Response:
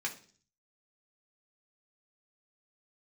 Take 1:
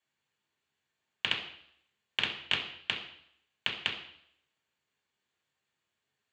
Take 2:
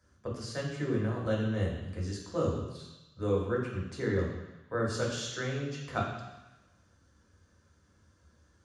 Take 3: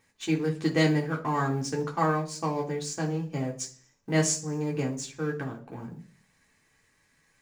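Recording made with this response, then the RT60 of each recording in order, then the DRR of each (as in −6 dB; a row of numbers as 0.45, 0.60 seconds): 3; 0.65, 1.0, 0.45 seconds; −4.0, −3.5, −1.5 decibels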